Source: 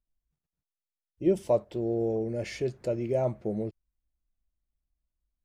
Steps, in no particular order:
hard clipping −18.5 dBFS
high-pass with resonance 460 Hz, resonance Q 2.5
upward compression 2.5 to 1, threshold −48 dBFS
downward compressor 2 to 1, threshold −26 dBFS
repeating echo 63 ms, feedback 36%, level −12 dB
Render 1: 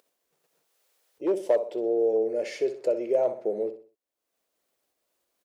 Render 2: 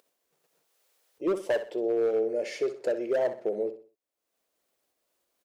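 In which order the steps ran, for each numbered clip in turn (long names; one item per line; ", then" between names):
upward compression, then repeating echo, then hard clipping, then downward compressor, then high-pass with resonance
upward compression, then high-pass with resonance, then hard clipping, then downward compressor, then repeating echo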